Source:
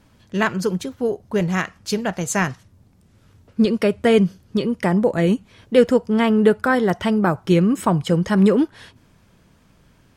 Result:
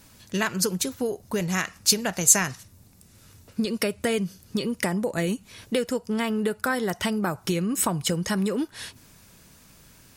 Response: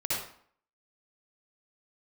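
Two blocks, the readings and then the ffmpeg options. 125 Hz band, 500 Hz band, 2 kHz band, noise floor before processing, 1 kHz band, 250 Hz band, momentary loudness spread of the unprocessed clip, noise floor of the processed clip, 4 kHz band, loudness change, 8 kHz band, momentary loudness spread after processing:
-8.5 dB, -9.5 dB, -4.5 dB, -56 dBFS, -7.5 dB, -9.0 dB, 9 LU, -55 dBFS, +2.0 dB, -6.0 dB, +10.5 dB, 10 LU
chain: -af "bandreject=f=3200:w=16,acompressor=threshold=0.0708:ratio=5,crystalizer=i=4.5:c=0,volume=0.891"

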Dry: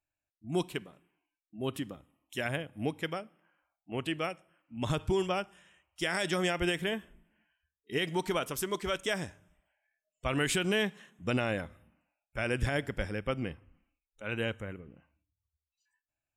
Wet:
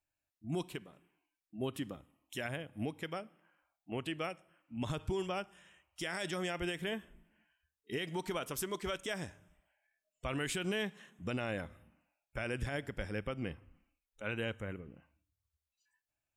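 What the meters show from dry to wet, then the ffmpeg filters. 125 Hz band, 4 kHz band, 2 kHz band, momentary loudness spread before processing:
-5.5 dB, -6.5 dB, -6.5 dB, 14 LU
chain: -af "alimiter=level_in=1.41:limit=0.0631:level=0:latency=1:release=275,volume=0.708"

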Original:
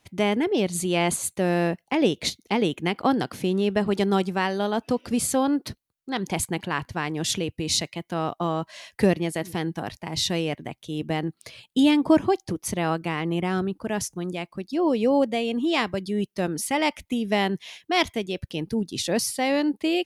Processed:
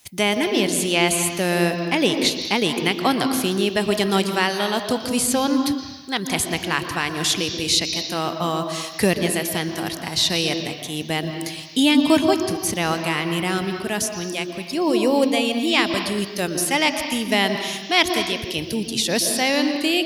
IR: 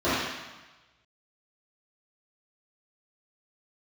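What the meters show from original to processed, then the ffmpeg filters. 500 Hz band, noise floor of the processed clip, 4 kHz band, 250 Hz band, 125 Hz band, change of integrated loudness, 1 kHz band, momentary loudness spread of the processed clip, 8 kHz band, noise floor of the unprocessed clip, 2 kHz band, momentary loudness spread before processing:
+2.5 dB, -34 dBFS, +9.0 dB, +2.5 dB, +1.0 dB, +4.5 dB, +3.5 dB, 7 LU, +6.5 dB, -73 dBFS, +7.5 dB, 9 LU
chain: -filter_complex "[0:a]acrossover=split=3700[s0][s1];[s1]acompressor=threshold=0.01:ratio=4:attack=1:release=60[s2];[s0][s2]amix=inputs=2:normalize=0,asplit=2[s3][s4];[s4]lowpass=f=5500:t=q:w=4.5[s5];[1:a]atrim=start_sample=2205,adelay=117[s6];[s5][s6]afir=irnorm=-1:irlink=0,volume=0.0596[s7];[s3][s7]amix=inputs=2:normalize=0,crystalizer=i=6.5:c=0"

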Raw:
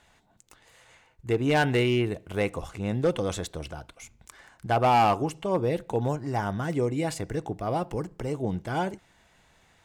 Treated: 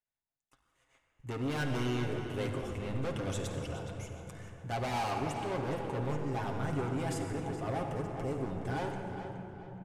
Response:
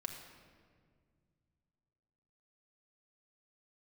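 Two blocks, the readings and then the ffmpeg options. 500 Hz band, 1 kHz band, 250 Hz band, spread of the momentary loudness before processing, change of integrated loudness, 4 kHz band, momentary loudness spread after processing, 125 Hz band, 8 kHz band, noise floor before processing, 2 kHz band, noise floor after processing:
-9.0 dB, -10.5 dB, -7.0 dB, 12 LU, -9.0 dB, -8.0 dB, 10 LU, -5.5 dB, -5.5 dB, -63 dBFS, -8.5 dB, under -85 dBFS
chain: -filter_complex "[0:a]agate=range=0.0251:threshold=0.002:ratio=16:detection=peak,equalizer=f=4300:w=5:g=-5.5,asoftclip=type=hard:threshold=0.0422,asplit=2[s0][s1];[s1]adelay=419,lowpass=f=4200:p=1,volume=0.355,asplit=2[s2][s3];[s3]adelay=419,lowpass=f=4200:p=1,volume=0.39,asplit=2[s4][s5];[s5]adelay=419,lowpass=f=4200:p=1,volume=0.39,asplit=2[s6][s7];[s7]adelay=419,lowpass=f=4200:p=1,volume=0.39[s8];[s0][s2][s4][s6][s8]amix=inputs=5:normalize=0[s9];[1:a]atrim=start_sample=2205,asetrate=25578,aresample=44100[s10];[s9][s10]afir=irnorm=-1:irlink=0,volume=0.473"

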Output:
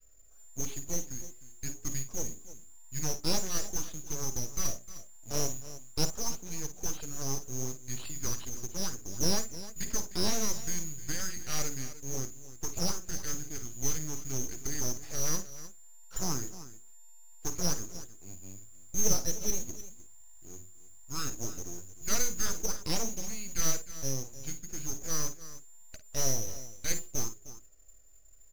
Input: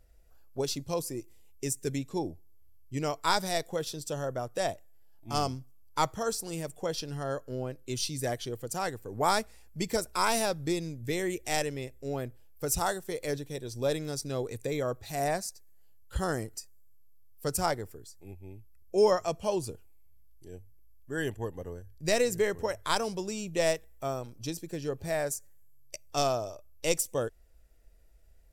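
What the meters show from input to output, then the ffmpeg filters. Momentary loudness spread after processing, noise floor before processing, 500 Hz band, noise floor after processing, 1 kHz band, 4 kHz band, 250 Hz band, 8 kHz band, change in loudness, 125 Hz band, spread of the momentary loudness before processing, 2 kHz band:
17 LU, -55 dBFS, -12.0 dB, -51 dBFS, -12.5 dB, -1.0 dB, -4.5 dB, +6.5 dB, -2.5 dB, -2.0 dB, 14 LU, -8.0 dB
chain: -filter_complex "[0:a]bandreject=f=60:t=h:w=6,bandreject=f=120:t=h:w=6,bandreject=f=180:t=h:w=6,bandreject=f=240:t=h:w=6,bandreject=f=300:t=h:w=6,bandreject=f=360:t=h:w=6,bandreject=f=420:t=h:w=6,adynamicequalizer=threshold=0.00794:dfrequency=660:dqfactor=1.5:tfrequency=660:tqfactor=1.5:attack=5:release=100:ratio=0.375:range=2:mode=boostabove:tftype=bell,lowpass=f=3100:t=q:w=0.5098,lowpass=f=3100:t=q:w=0.6013,lowpass=f=3100:t=q:w=0.9,lowpass=f=3100:t=q:w=2.563,afreqshift=-3600,aeval=exprs='abs(val(0))':c=same,aecho=1:1:52|307:0.237|0.15,asplit=2[s0][s1];[s1]asoftclip=type=tanh:threshold=0.0335,volume=0.355[s2];[s0][s2]amix=inputs=2:normalize=0,acrusher=bits=5:mode=log:mix=0:aa=0.000001,volume=0.794"

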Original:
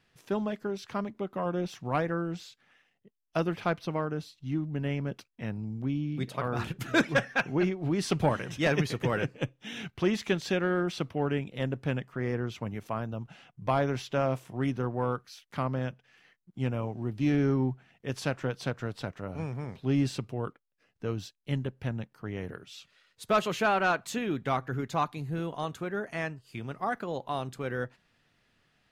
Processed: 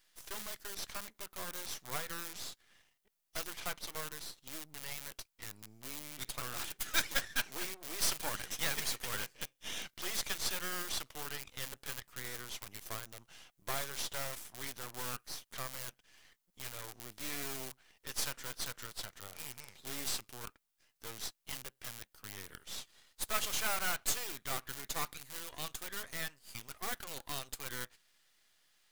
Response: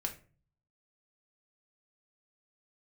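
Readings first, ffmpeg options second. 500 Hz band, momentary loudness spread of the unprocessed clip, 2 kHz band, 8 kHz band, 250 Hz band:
-17.5 dB, 11 LU, -6.5 dB, +9.0 dB, -22.0 dB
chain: -filter_complex "[0:a]asplit=2[s0][s1];[s1]aeval=exprs='(mod(28.2*val(0)+1,2)-1)/28.2':c=same,volume=0.282[s2];[s0][s2]amix=inputs=2:normalize=0,aderivative,bandreject=f=2600:w=14,aeval=exprs='max(val(0),0)':c=same,volume=3.35"

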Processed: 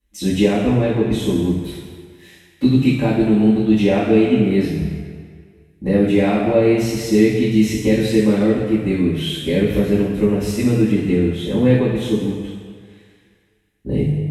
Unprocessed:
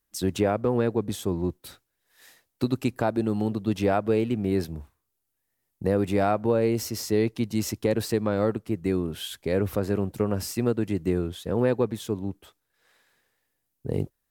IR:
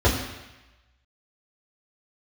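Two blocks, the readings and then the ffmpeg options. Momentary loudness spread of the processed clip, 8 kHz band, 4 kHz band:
10 LU, +3.5 dB, +9.5 dB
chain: -filter_complex "[0:a]highshelf=f=1700:t=q:w=1.5:g=9.5[s0];[1:a]atrim=start_sample=2205,asetrate=25578,aresample=44100[s1];[s0][s1]afir=irnorm=-1:irlink=0,volume=0.15"

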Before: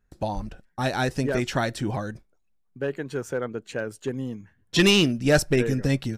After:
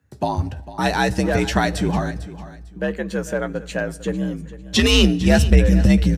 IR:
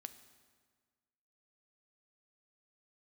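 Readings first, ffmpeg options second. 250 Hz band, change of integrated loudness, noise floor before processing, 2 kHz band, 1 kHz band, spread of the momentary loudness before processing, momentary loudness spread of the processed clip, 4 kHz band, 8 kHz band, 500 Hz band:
+6.5 dB, +5.5 dB, -67 dBFS, +4.0 dB, +7.0 dB, 14 LU, 14 LU, +4.0 dB, +4.0 dB, +3.0 dB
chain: -filter_complex "[0:a]asubboost=boost=8.5:cutoff=91,alimiter=limit=0.224:level=0:latency=1:release=67,aecho=1:1:450|900:0.158|0.038,asplit=2[s0][s1];[1:a]atrim=start_sample=2205,adelay=13[s2];[s1][s2]afir=irnorm=-1:irlink=0,volume=0.562[s3];[s0][s3]amix=inputs=2:normalize=0,afreqshift=58,volume=2"

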